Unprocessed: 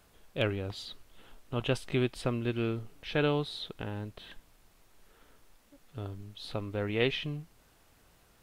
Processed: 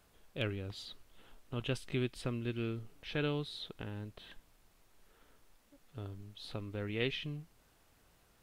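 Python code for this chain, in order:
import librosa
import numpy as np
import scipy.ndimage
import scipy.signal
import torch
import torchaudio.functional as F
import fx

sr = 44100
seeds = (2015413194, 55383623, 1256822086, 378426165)

y = fx.dynamic_eq(x, sr, hz=770.0, q=0.98, threshold_db=-46.0, ratio=4.0, max_db=-7)
y = F.gain(torch.from_numpy(y), -4.5).numpy()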